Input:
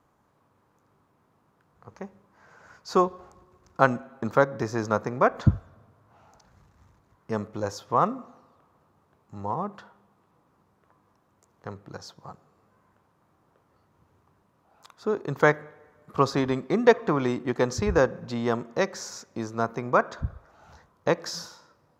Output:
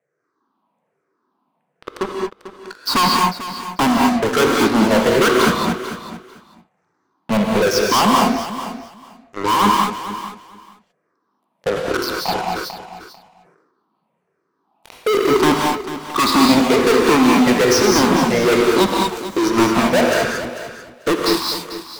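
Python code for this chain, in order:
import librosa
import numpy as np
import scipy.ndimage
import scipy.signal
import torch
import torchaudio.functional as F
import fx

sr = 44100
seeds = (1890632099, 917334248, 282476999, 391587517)

y = fx.spec_ripple(x, sr, per_octave=0.51, drift_hz=-1.2, depth_db=24)
y = scipy.signal.sosfilt(scipy.signal.butter(4, 180.0, 'highpass', fs=sr, output='sos'), y)
y = fx.high_shelf(y, sr, hz=5900.0, db=-10.0)
y = fx.notch(y, sr, hz=6900.0, q=9.2)
y = fx.leveller(y, sr, passes=5)
y = np.clip(10.0 ** (12.0 / 20.0) * y, -1.0, 1.0) / 10.0 ** (12.0 / 20.0)
y = fx.echo_feedback(y, sr, ms=444, feedback_pct=17, wet_db=-13.0)
y = fx.rev_gated(y, sr, seeds[0], gate_ms=250, shape='rising', drr_db=-0.5)
y = fx.sustainer(y, sr, db_per_s=51.0, at=(11.69, 15.35))
y = F.gain(torch.from_numpy(y), -2.0).numpy()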